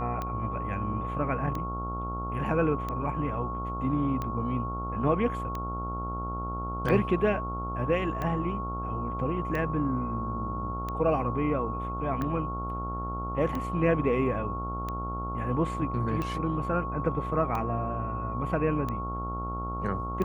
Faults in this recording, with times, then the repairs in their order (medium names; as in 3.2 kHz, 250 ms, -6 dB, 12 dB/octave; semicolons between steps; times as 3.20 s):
buzz 60 Hz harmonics 23 -35 dBFS
tick 45 rpm -20 dBFS
whine 1.1 kHz -34 dBFS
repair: de-click; de-hum 60 Hz, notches 23; band-stop 1.1 kHz, Q 30